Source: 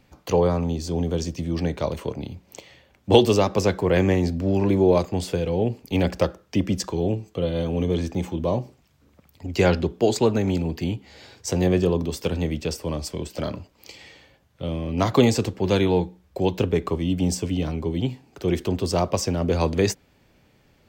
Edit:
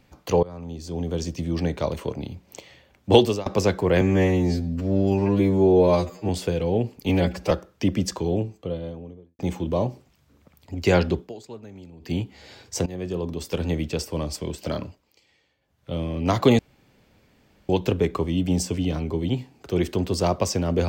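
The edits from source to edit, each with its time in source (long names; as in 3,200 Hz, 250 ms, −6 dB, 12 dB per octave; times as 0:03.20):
0:00.43–0:01.37: fade in, from −23 dB
0:03.19–0:03.46: fade out, to −23 dB
0:04.01–0:05.15: time-stretch 2×
0:05.95–0:06.23: time-stretch 1.5×
0:06.90–0:08.11: fade out and dull
0:09.91–0:10.85: duck −20 dB, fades 0.13 s
0:11.58–0:12.43: fade in, from −19 dB
0:13.55–0:14.63: duck −18 dB, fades 0.30 s
0:15.31–0:16.41: fill with room tone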